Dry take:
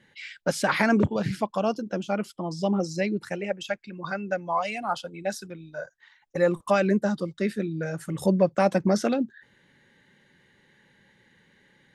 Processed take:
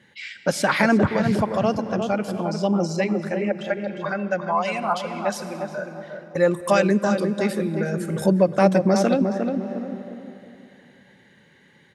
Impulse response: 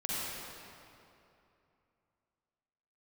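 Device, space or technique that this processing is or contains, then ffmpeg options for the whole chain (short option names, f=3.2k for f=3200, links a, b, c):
ducked reverb: -filter_complex "[0:a]asettb=1/sr,asplit=3[a][b][c];[a]atrim=end=6.514[d];[b]atrim=start=6.51:end=7.59,asetpts=PTS-STARTPTS,afade=t=in:d=0.004:c=qsin,afade=t=out:st=1.076:d=0.004:c=qsin,aemphasis=mode=production:type=cd[e];[c]atrim=start=7.586[f];[d][e]acrossfade=d=0.004:c1=hsin:c2=qsin[g];[g][f]acrossfade=d=0.004:c1=qsin:c2=hsin,highpass=60,asplit=2[h][i];[i]adelay=355,lowpass=f=1.2k:p=1,volume=-5dB,asplit=2[j][k];[k]adelay=355,lowpass=f=1.2k:p=1,volume=0.37,asplit=2[l][m];[m]adelay=355,lowpass=f=1.2k:p=1,volume=0.37,asplit=2[n][o];[o]adelay=355,lowpass=f=1.2k:p=1,volume=0.37,asplit=2[p][q];[q]adelay=355,lowpass=f=1.2k:p=1,volume=0.37[r];[h][j][l][n][p][r]amix=inputs=6:normalize=0,asettb=1/sr,asplit=3[s][t][u];[s]atrim=end=3.044[v];[t]atrim=start=3.04:end=4.3,asetpts=PTS-STARTPTS,afade=t=in:d=0.004:c=qsin,afade=t=out:st=1.256:d=0.004:c=qsin,acrossover=split=2700[w][x];[x]acompressor=threshold=-52dB:ratio=4:attack=1:release=60[y];[w][y]amix=inputs=2:normalize=0[z];[u]atrim=start=4.296[aa];[v][z]acrossfade=d=0.004:c1=hsin:c2=qsin[ab];[ab][aa]acrossfade=d=0.004:c1=qsin:c2=hsin,asplit=3[ac][ad][ae];[1:a]atrim=start_sample=2205[af];[ad][af]afir=irnorm=-1:irlink=0[ag];[ae]apad=whole_len=605147[ah];[ag][ah]sidechaincompress=threshold=-32dB:ratio=8:attack=48:release=243,volume=-13dB[ai];[ac][ai]amix=inputs=2:normalize=0,volume=3dB"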